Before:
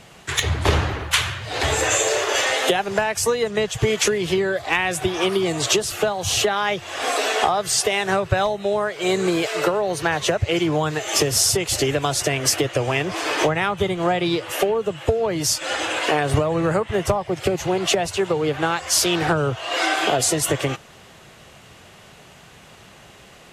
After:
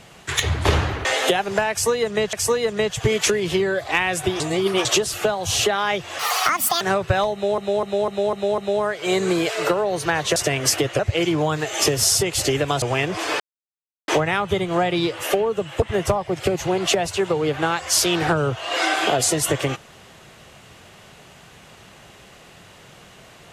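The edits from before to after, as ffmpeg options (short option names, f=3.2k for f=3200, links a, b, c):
-filter_complex "[0:a]asplit=17[a][b][c][d][e][f][g][h][i][j][k][l][m][n][o][p][q];[a]atrim=end=1.052[r];[b]atrim=start=2.448:end=3.732[s];[c]atrim=start=3.108:end=5.182[t];[d]atrim=start=5.178:end=5.632,asetpts=PTS-STARTPTS,areverse[u];[e]atrim=start=5.628:end=6.974[v];[f]atrim=start=6.97:end=8.03,asetpts=PTS-STARTPTS,asetrate=75411,aresample=44100[w];[g]atrim=start=8.026:end=8.802[x];[h]atrim=start=8.548:end=8.802[y];[i]atrim=start=8.548:end=8.802[z];[j]atrim=start=8.548:end=8.802[aa];[k]atrim=start=8.548:end=8.802[ab];[l]atrim=start=8.548:end=10.332[ac];[m]atrim=start=12.158:end=12.792[ad];[n]atrim=start=10.328:end=12.162[ae];[o]atrim=start=12.788:end=13.37,asetpts=PTS-STARTPTS,afade=t=out:st=0.578:d=0.004:c=hsin,apad=pad_dur=0.68[af];[p]atrim=start=13.37:end=15.112,asetpts=PTS-STARTPTS,afade=t=in:d=0.004:c=hsin[ag];[q]atrim=start=16.818[ah];[r][s]acrossfade=d=0.004:c1=hsin:c2=hsin[ai];[ai][t]acrossfade=d=0.004:c1=hsin:c2=hsin[aj];[aj][u]acrossfade=d=0.004:c1=hsin:c2=hsin[ak];[ak][v]acrossfade=d=0.004:c1=hsin:c2=hsin[al];[al][w]acrossfade=d=0.004:c1=hsin:c2=hsin[am];[am][x]acrossfade=d=0.004:c1=hsin:c2=hsin[an];[an][y]acrossfade=d=0.004:c1=hsin:c2=hsin[ao];[ao][z]acrossfade=d=0.004:c1=hsin:c2=hsin[ap];[ap][aa]acrossfade=d=0.004:c1=hsin:c2=hsin[aq];[aq][ab]acrossfade=d=0.004:c1=hsin:c2=hsin[ar];[ar][ac]acrossfade=d=0.004:c1=hsin:c2=hsin[as];[as][ad]acrossfade=d=0.004:c1=hsin:c2=hsin[at];[at][ae]acrossfade=d=0.004:c1=hsin:c2=hsin[au];[af][ag]concat=n=2:v=0:a=1[av];[au][av]acrossfade=d=0.004:c1=hsin:c2=hsin[aw];[aw][ah]acrossfade=d=0.004:c1=hsin:c2=hsin"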